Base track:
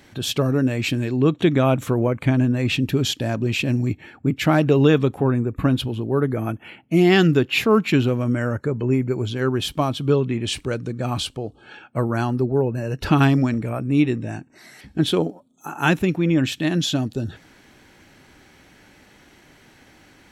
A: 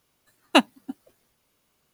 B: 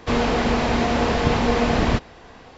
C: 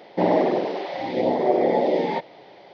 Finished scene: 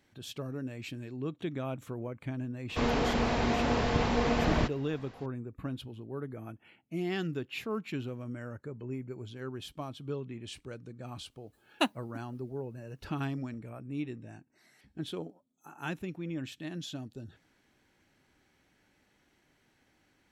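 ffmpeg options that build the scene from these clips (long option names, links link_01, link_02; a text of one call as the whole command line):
ffmpeg -i bed.wav -i cue0.wav -i cue1.wav -filter_complex "[0:a]volume=-18.5dB[link_01];[2:a]atrim=end=2.57,asetpts=PTS-STARTPTS,volume=-8.5dB,afade=type=in:duration=0.004:curve=hsin,afade=type=out:start_time=2.566:duration=0.004:curve=hsin,adelay=2690[link_02];[1:a]atrim=end=1.93,asetpts=PTS-STARTPTS,volume=-11dB,afade=type=in:duration=0.004:curve=hsin,afade=type=out:start_time=1.926:duration=0.004:curve=hsin,adelay=11260[link_03];[link_01][link_02][link_03]amix=inputs=3:normalize=0" out.wav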